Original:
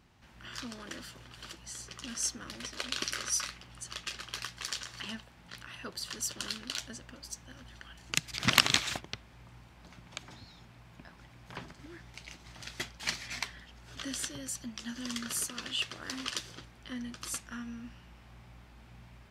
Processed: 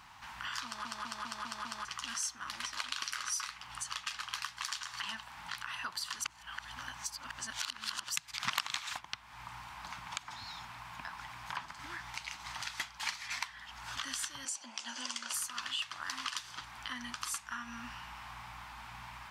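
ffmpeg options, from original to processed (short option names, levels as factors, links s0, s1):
-filter_complex "[0:a]asettb=1/sr,asplit=3[s0][s1][s2];[s0]atrim=end=14.454[s3];[s1]atrim=start=14.45:end=15.34,asetpts=PTS-STARTPTS,afade=t=in:d=0.004:c=qsin,afade=t=out:st=0.886:d=0.004:c=qsin,highpass=f=260:w=0.5412,highpass=f=260:w=1.3066,equalizer=f=550:t=q:w=4:g=8,equalizer=f=1200:t=q:w=4:g=-8,equalizer=f=1800:t=q:w=4:g=-8,equalizer=f=3800:t=q:w=4:g=-5,lowpass=f=9300:w=0.5412,lowpass=f=9300:w=1.3066[s4];[s2]atrim=start=15.336[s5];[s3][s4]acrossfade=d=0.004:c1=hsin:c2=qsin[s6];[s6][s5]acrossfade=d=0.004:c1=qsin:c2=hsin,asplit=9[s7][s8][s9][s10][s11][s12][s13][s14][s15];[s7]atrim=end=0.852[s16];[s8]atrim=start=0.648:end=0.852[s17];[s9]atrim=start=0.648:end=0.852[s18];[s10]atrim=start=0.648:end=0.852[s19];[s11]atrim=start=0.648:end=0.852[s20];[s12]atrim=start=0.648:end=0.852[s21];[s13]atrim=start=1.848:end=6.242[s22];[s14]atrim=start=6.238:end=8.162,asetpts=PTS-STARTPTS,areverse[s23];[s15]atrim=start=8.158[s24];[s16][s17]acrossfade=d=0.004:c1=hsin:c2=hsin[s25];[s25][s18]acrossfade=d=0.004:c1=hsin:c2=hsin[s26];[s26][s19]acrossfade=d=0.004:c1=hsin:c2=hsin[s27];[s27][s20]acrossfade=d=0.004:c1=hsin:c2=hsin[s28];[s28][s21]acrossfade=d=0.004:c1=hsin:c2=hsin[s29];[s29][s22]acrossfade=d=0.004:c1=hsin:c2=hsin[s30];[s30][s23]acrossfade=d=0.004:c1=hsin:c2=hsin[s31];[s31][s24]acrossfade=d=0.004:c1=hsin:c2=hsin,lowshelf=f=670:t=q:w=3:g=-12,acompressor=threshold=0.00316:ratio=3,volume=3.35"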